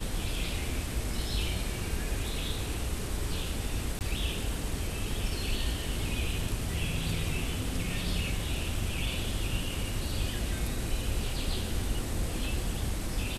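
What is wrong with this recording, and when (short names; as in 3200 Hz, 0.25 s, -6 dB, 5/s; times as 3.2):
3.99–4.01 gap 18 ms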